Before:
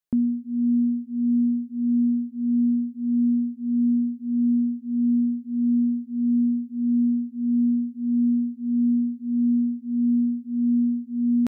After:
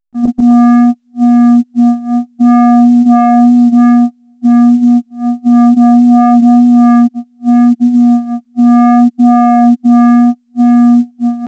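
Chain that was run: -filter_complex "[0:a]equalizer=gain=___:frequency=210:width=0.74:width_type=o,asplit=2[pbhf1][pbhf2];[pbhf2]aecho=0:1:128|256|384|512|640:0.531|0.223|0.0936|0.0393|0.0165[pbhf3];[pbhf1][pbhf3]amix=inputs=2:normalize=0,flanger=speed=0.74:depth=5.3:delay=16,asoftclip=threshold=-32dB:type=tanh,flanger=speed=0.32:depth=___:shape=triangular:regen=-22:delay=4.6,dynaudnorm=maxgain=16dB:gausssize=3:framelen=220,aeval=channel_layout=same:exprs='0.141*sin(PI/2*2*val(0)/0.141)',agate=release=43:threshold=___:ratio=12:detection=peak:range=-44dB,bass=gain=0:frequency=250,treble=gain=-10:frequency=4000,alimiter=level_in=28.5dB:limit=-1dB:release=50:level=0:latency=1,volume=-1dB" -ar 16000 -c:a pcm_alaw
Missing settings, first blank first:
-11.5, 2.3, -22dB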